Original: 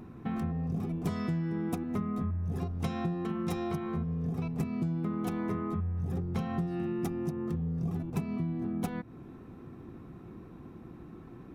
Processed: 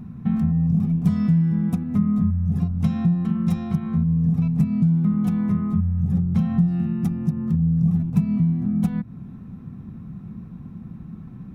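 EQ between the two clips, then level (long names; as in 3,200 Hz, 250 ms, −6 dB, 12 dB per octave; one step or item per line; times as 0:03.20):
low shelf with overshoot 260 Hz +9 dB, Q 3
0.0 dB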